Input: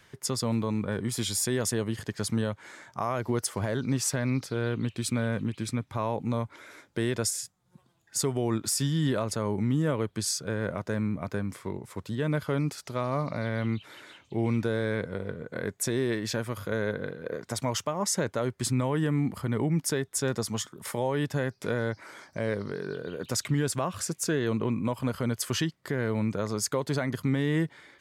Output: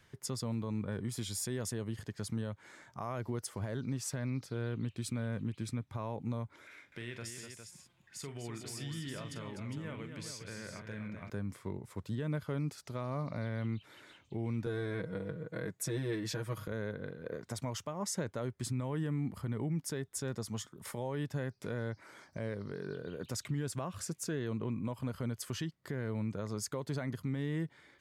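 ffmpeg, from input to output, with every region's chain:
-filter_complex "[0:a]asettb=1/sr,asplit=3[a][b][c];[a]atrim=end=6.674[d];[b]atrim=start=6.67:end=11.3,asetpts=PTS-STARTPTS,afade=t=in:d=0.004:c=qsin,afade=t=out:st=4.626:d=0.004:c=qsin,equalizer=f=2.4k:w=1:g=14,acompressor=threshold=-55dB:ratio=1.5:attack=3.2:release=140:knee=1:detection=peak,aecho=1:1:42|249|407:0.316|0.422|0.398,atrim=end_sample=204183[e];[c]atrim=start=11.296[f];[d][e]acrossfade=d=0.004:c1=hsin:c2=qsin[g];[g][f]acrossfade=d=0.004:c1=qsin:c2=hsin,asettb=1/sr,asplit=3[h][i][j];[h]atrim=end=14.664[k];[i]atrim=start=14.66:end=16.68,asetpts=PTS-STARTPTS,afade=t=in:d=0.004:c=qsin,afade=t=out:st=2.016:d=0.004:c=qsin,highpass=61,aecho=1:1:6.3:1,atrim=end_sample=89082[l];[j]atrim=start=16.676[m];[k][l]acrossfade=d=0.004:c1=hsin:c2=qsin[n];[n][m]acrossfade=d=0.004:c1=qsin:c2=hsin,lowshelf=f=200:g=7,alimiter=limit=-19dB:level=0:latency=1:release=321,volume=-8dB"

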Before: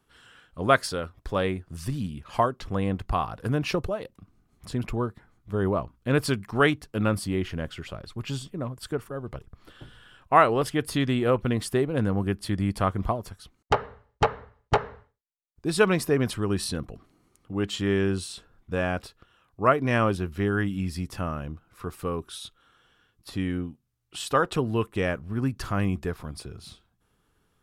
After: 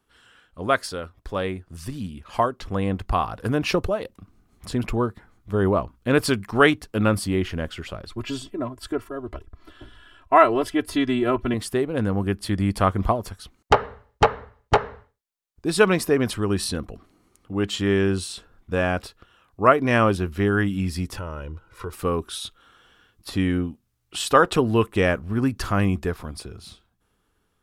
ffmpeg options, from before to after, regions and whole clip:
-filter_complex "[0:a]asettb=1/sr,asplit=3[a][b][c];[a]atrim=end=8.114[d];[b]atrim=start=8.11:end=11.54,asetpts=PTS-STARTPTS,afade=t=in:d=0.004:c=qsin,afade=t=out:st=3.426:d=0.004:c=qsin,highshelf=f=4.3k:g=-5.5,aecho=1:1:3:0.91,atrim=end_sample=151263[e];[c]atrim=start=11.536[f];[d][e]acrossfade=d=0.004:c1=hsin:c2=qsin[g];[g][f]acrossfade=d=0.004:c1=qsin:c2=hsin,asettb=1/sr,asplit=3[h][i][j];[h]atrim=end=21.164[k];[i]atrim=start=21.16:end=21.93,asetpts=PTS-STARTPTS,afade=t=in:d=0.004:c=qsin,afade=t=out:st=0.766:d=0.004:c=qsin,highshelf=f=11k:g=-11.5,aecho=1:1:2.1:0.65,atrim=end_sample=33957,acompressor=threshold=-34dB:ratio=3:attack=3.2:release=140:knee=1:detection=peak[l];[j]atrim=start=21.926[m];[k][l]acrossfade=d=0.004:c1=hsin:c2=qsin[n];[n][m]acrossfade=d=0.004:c1=qsin:c2=hsin,equalizer=f=140:t=o:w=0.38:g=-7,dynaudnorm=f=620:g=7:m=11.5dB,volume=-1dB"

